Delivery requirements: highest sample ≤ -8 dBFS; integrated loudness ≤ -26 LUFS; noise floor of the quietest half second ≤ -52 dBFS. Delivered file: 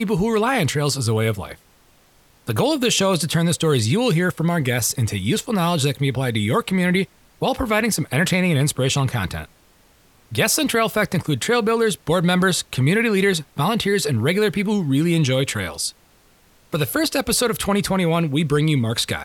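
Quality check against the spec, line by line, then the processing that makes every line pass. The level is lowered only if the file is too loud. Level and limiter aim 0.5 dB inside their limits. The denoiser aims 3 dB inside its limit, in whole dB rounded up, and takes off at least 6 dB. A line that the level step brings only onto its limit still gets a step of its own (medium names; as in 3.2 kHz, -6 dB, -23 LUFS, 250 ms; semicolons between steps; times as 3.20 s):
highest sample -5.0 dBFS: fail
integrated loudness -20.0 LUFS: fail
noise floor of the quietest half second -55 dBFS: pass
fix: trim -6.5 dB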